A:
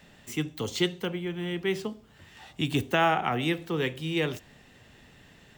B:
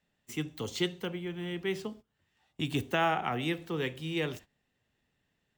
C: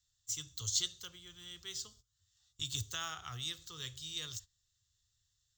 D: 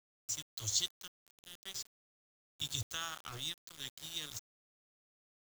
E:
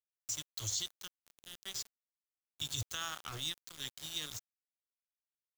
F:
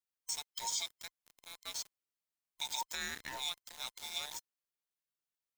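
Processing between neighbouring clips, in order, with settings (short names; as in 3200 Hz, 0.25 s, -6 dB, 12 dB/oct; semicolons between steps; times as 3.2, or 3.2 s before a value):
gate -43 dBFS, range -19 dB; gain -4.5 dB
EQ curve 110 Hz 0 dB, 190 Hz -29 dB, 440 Hz -25 dB, 820 Hz -26 dB, 1200 Hz -10 dB, 2400 Hz -19 dB, 3600 Hz +3 dB, 7100 Hz +13 dB, 11000 Hz -15 dB, 15000 Hz +1 dB; gain +1 dB
sample gate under -42.5 dBFS
limiter -27.5 dBFS, peak gain reduction 8 dB; gain +2 dB
band inversion scrambler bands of 1000 Hz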